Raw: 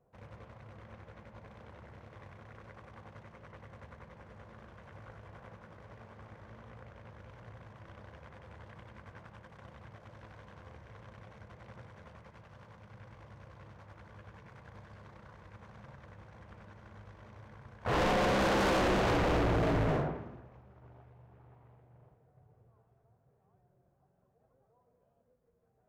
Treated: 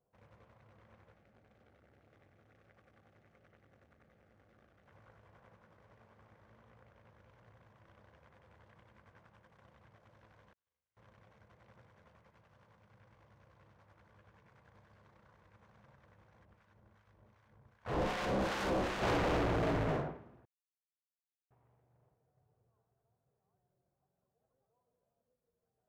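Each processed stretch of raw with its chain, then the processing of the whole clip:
1.14–4.88 Butterworth band-stop 980 Hz, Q 3.3 + core saturation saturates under 610 Hz
10.53–10.97 expander -40 dBFS + pre-emphasis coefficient 0.9 + flutter echo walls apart 6.6 m, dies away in 0.65 s
16.45–19.02 low shelf 180 Hz +3.5 dB + harmonic tremolo 2.6 Hz, crossover 920 Hz
20.45–21.51 sine-wave speech + companded quantiser 2-bit
whole clip: low shelf 140 Hz -4 dB; upward expander 1.5:1, over -45 dBFS; gain -2 dB

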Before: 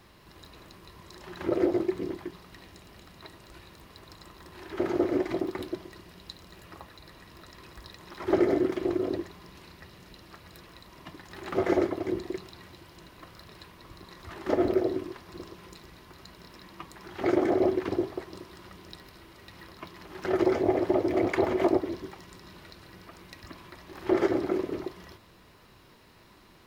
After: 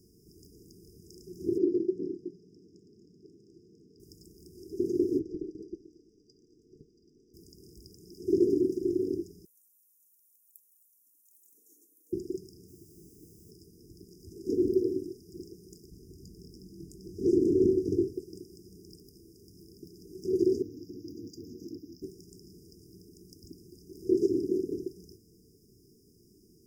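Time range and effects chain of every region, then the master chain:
1.58–4 HPF 160 Hz + air absorption 180 m
5.19–7.34 ring modulator 690 Hz + air absorption 180 m
9.45–12.13 HPF 260 Hz 24 dB/oct + differentiator + fixed phaser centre 1400 Hz, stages 6
12.68–13.51 brick-wall FIR low-pass 2800 Hz + requantised 10-bit, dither triangular
15.91–18.13 low shelf 170 Hz +9 dB + doubler 21 ms -9.5 dB + Doppler distortion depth 0.42 ms
20.62–22.02 low shelf 140 Hz -11.5 dB + fixed phaser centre 2000 Hz, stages 8 + core saturation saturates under 1300 Hz
whole clip: FFT band-reject 470–4800 Hz; low shelf 81 Hz -9 dB

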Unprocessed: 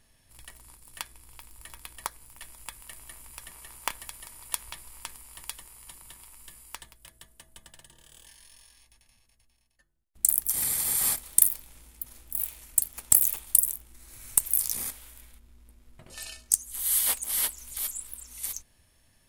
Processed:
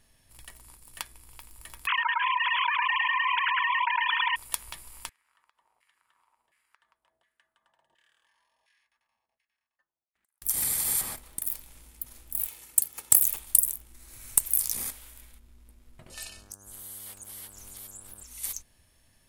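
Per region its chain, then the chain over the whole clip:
1.87–4.36 sine-wave speech + echo 0.107 s -3.5 dB + fast leveller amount 100%
5.09–10.42 compressor 16:1, threshold -50 dBFS + LFO band-pass saw down 1.4 Hz 690–2100 Hz
11.01–11.47 high shelf 3000 Hz -10 dB + compressor 2:1, threshold -32 dBFS + mismatched tape noise reduction decoder only
12.47–13.23 HPF 120 Hz + comb 2.3 ms, depth 39%
16.27–18.22 compressor 5:1, threshold -42 dBFS + buzz 100 Hz, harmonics 17, -58 dBFS
whole clip: dry

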